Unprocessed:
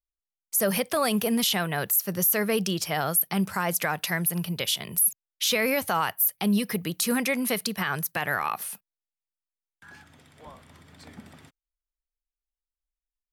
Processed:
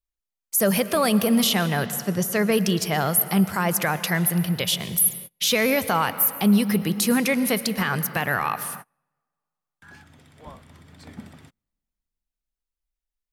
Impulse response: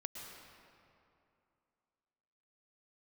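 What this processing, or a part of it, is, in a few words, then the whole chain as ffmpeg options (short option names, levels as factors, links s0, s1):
keyed gated reverb: -filter_complex "[0:a]asplit=3[s0][s1][s2];[1:a]atrim=start_sample=2205[s3];[s1][s3]afir=irnorm=-1:irlink=0[s4];[s2]apad=whole_len=587837[s5];[s4][s5]sidechaingate=range=0.0224:threshold=0.00562:ratio=16:detection=peak,volume=0.596[s6];[s0][s6]amix=inputs=2:normalize=0,asettb=1/sr,asplit=3[s7][s8][s9];[s7]atrim=end=1.864[s10];[s8]atrim=start=1.86:end=2.52,asetpts=PTS-STARTPTS,afade=t=in:d=0.004:c=qsin,afade=t=out:st=0.656:d=0.004:c=qsin,lowpass=7700[s11];[s9]atrim=start=2.516[s12];[s10][s11]acrossfade=d=0.004:c1=hsin:c2=qsin[s13];[s13][s12]acrossfade=d=0.004:c1=qsin:c2=hsin,lowshelf=f=280:g=5.5"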